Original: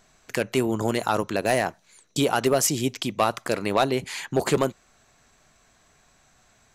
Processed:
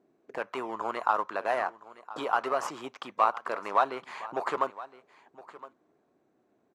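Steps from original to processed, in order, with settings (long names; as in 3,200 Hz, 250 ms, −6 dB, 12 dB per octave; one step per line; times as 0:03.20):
high-pass filter 220 Hz 6 dB per octave
in parallel at −10 dB: sample-and-hold swept by an LFO 20×, swing 60% 1.3 Hz
on the sum: envelope filter 320–1,100 Hz, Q 2.9, up, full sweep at −26.5 dBFS
single-tap delay 1,015 ms −17.5 dB
level +3.5 dB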